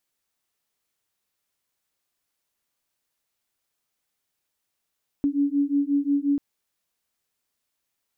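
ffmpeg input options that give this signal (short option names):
-f lavfi -i "aevalsrc='0.0708*(sin(2*PI*281*t)+sin(2*PI*286.6*t))':d=1.14:s=44100"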